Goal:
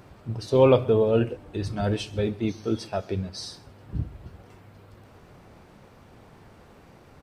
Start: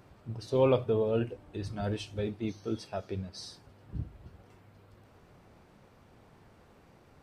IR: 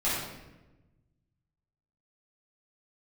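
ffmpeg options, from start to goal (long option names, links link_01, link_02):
-af "aecho=1:1:132:0.075,volume=7.5dB"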